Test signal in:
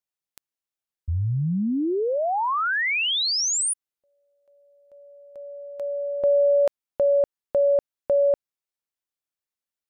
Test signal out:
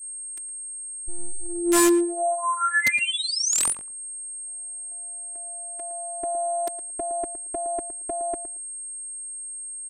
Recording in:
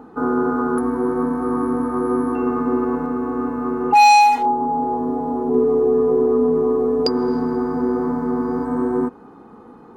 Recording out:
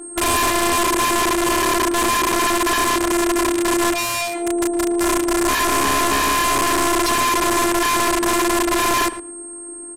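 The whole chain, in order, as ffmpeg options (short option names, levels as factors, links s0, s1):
-filter_complex "[0:a]equalizer=f=125:t=o:w=1:g=6,equalizer=f=250:t=o:w=1:g=10,equalizer=f=2000:t=o:w=1:g=7,equalizer=f=4000:t=o:w=1:g=-4,equalizer=f=8000:t=o:w=1:g=9,afftfilt=real='hypot(re,im)*cos(PI*b)':imag='0':win_size=512:overlap=0.75,aeval=exprs='val(0)+0.0251*sin(2*PI*8500*n/s)':c=same,aeval=exprs='(mod(4.73*val(0)+1,2)-1)/4.73':c=same,asplit=2[s0][s1];[s1]adelay=113,lowpass=f=1600:p=1,volume=0.266,asplit=2[s2][s3];[s3]adelay=113,lowpass=f=1600:p=1,volume=0.16[s4];[s2][s4]amix=inputs=2:normalize=0[s5];[s0][s5]amix=inputs=2:normalize=0,aresample=32000,aresample=44100,adynamicequalizer=threshold=0.02:dfrequency=7800:dqfactor=0.7:tfrequency=7800:tqfactor=0.7:attack=5:release=100:ratio=0.333:range=2.5:mode=cutabove:tftype=highshelf"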